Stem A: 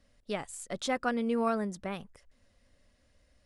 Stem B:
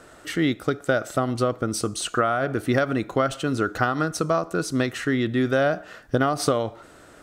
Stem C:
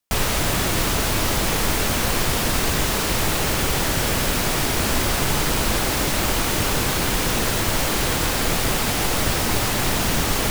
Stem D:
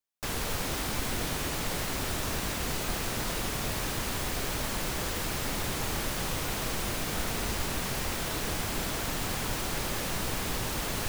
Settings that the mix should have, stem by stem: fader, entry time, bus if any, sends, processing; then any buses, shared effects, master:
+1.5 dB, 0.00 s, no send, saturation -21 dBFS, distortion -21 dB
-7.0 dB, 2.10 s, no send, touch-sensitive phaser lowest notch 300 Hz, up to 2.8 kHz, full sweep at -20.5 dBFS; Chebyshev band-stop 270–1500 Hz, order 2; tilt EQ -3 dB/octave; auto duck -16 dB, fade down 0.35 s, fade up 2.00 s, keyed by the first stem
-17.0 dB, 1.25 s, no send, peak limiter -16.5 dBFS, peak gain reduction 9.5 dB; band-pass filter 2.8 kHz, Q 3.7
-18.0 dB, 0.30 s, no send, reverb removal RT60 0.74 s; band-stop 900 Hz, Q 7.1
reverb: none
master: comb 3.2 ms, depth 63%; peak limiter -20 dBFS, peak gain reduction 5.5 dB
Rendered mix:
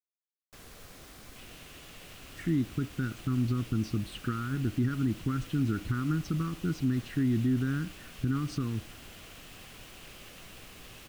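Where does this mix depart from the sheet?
stem A: muted; stem D: missing reverb removal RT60 0.74 s; master: missing comb 3.2 ms, depth 63%

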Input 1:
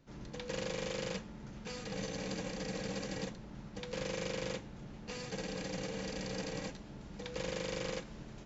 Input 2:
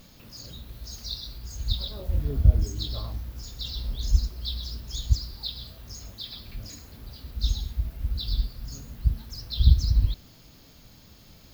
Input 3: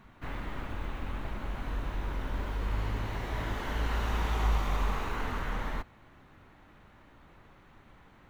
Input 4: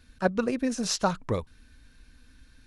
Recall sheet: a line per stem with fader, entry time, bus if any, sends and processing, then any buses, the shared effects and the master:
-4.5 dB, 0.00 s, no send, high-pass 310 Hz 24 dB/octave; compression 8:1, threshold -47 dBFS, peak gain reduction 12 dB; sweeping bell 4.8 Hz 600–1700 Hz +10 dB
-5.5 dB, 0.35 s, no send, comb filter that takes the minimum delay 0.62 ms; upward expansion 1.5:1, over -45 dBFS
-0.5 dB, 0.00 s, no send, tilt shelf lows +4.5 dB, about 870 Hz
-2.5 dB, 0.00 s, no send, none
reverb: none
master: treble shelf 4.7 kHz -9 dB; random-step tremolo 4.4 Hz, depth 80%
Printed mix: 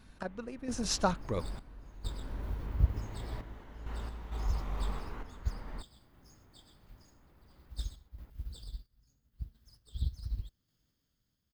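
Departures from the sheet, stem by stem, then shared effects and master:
stem 1: muted; stem 3 -0.5 dB -> -8.0 dB; master: missing treble shelf 4.7 kHz -9 dB

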